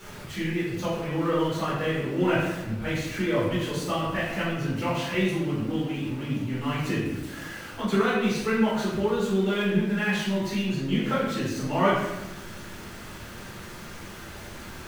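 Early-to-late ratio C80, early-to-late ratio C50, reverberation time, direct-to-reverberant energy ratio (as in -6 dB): 3.0 dB, 0.5 dB, 1.0 s, -10.0 dB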